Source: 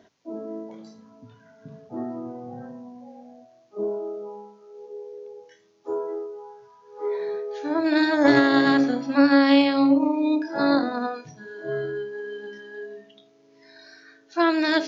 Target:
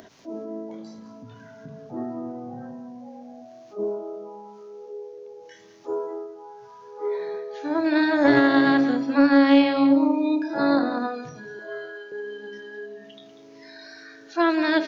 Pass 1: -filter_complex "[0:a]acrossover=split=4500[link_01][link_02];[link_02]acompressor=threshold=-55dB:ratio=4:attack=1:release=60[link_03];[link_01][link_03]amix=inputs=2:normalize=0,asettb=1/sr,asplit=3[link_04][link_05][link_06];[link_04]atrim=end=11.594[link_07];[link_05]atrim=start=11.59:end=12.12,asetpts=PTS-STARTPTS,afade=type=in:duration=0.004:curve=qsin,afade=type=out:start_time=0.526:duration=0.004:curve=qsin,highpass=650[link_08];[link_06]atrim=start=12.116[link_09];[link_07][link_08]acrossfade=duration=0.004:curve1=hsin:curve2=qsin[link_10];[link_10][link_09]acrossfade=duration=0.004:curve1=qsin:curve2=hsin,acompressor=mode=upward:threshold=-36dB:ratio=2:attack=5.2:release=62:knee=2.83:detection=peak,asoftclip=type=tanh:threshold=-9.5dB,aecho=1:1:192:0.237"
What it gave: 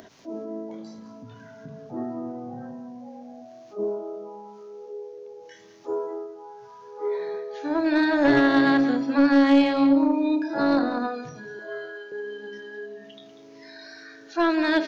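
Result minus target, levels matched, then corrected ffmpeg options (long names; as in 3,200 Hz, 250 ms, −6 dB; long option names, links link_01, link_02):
soft clipping: distortion +14 dB
-filter_complex "[0:a]acrossover=split=4500[link_01][link_02];[link_02]acompressor=threshold=-55dB:ratio=4:attack=1:release=60[link_03];[link_01][link_03]amix=inputs=2:normalize=0,asettb=1/sr,asplit=3[link_04][link_05][link_06];[link_04]atrim=end=11.594[link_07];[link_05]atrim=start=11.59:end=12.12,asetpts=PTS-STARTPTS,afade=type=in:duration=0.004:curve=qsin,afade=type=out:start_time=0.526:duration=0.004:curve=qsin,highpass=650[link_08];[link_06]atrim=start=12.116[link_09];[link_07][link_08]acrossfade=duration=0.004:curve1=hsin:curve2=qsin[link_10];[link_10][link_09]acrossfade=duration=0.004:curve1=qsin:curve2=hsin,acompressor=mode=upward:threshold=-36dB:ratio=2:attack=5.2:release=62:knee=2.83:detection=peak,asoftclip=type=tanh:threshold=-1dB,aecho=1:1:192:0.237"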